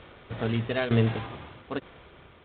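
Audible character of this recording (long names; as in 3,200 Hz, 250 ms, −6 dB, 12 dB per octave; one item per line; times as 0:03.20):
a buzz of ramps at a fixed pitch in blocks of 8 samples
tremolo saw down 1.1 Hz, depth 75%
G.726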